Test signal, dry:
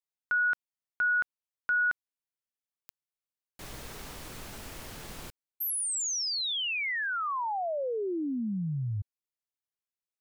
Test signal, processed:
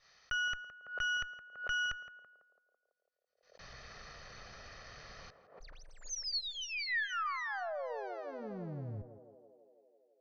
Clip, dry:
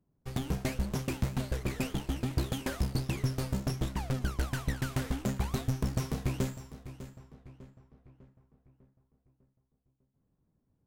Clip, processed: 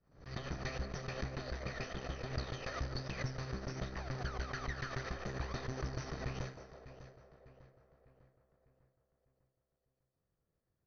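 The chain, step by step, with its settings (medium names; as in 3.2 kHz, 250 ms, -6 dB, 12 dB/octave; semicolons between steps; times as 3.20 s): comb filter that takes the minimum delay 1.6 ms; rippled Chebyshev low-pass 6.2 kHz, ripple 9 dB; de-hum 252 Hz, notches 7; on a send: band-passed feedback delay 166 ms, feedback 77%, band-pass 520 Hz, level -7 dB; on the sum: swell ahead of each attack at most 120 dB/s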